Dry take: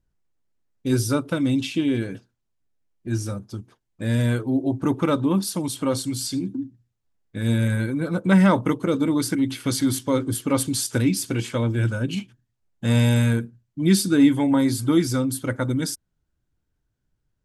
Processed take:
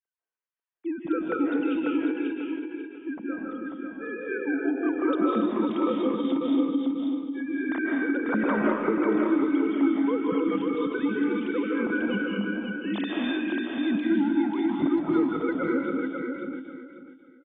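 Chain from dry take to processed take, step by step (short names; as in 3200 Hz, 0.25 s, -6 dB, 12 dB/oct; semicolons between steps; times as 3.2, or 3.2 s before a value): sine-wave speech; soft clip -9.5 dBFS, distortion -12 dB; compressor, threshold -25 dBFS, peak gain reduction 12.5 dB; feedback echo 0.542 s, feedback 25%, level -4.5 dB; reverb RT60 1.1 s, pre-delay 0.12 s, DRR -2.5 dB; ending taper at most 120 dB/s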